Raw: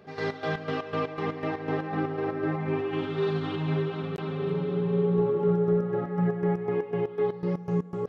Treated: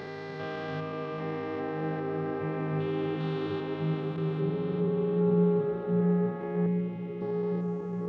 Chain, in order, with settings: spectrogram pixelated in time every 400 ms; 6.66–7.22 s: elliptic band-stop 310–2000 Hz; repeats whose band climbs or falls 293 ms, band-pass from 150 Hz, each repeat 0.7 oct, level 0 dB; trim -2.5 dB

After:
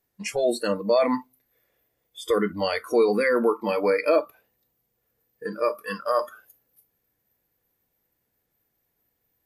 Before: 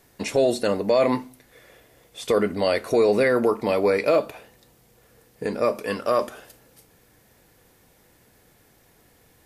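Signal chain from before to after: spectral noise reduction 21 dB

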